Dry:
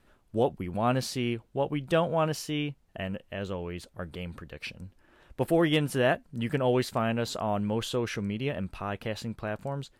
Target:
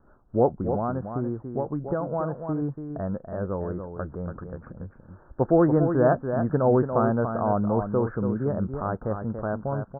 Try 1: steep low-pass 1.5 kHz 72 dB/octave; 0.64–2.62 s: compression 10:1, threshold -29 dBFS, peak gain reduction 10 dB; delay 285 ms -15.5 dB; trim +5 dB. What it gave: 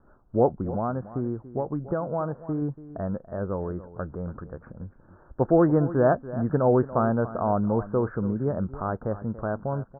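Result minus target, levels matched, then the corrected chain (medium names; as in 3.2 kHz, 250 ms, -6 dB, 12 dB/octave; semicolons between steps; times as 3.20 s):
echo-to-direct -8 dB
steep low-pass 1.5 kHz 72 dB/octave; 0.64–2.62 s: compression 10:1, threshold -29 dBFS, peak gain reduction 10 dB; delay 285 ms -7.5 dB; trim +5 dB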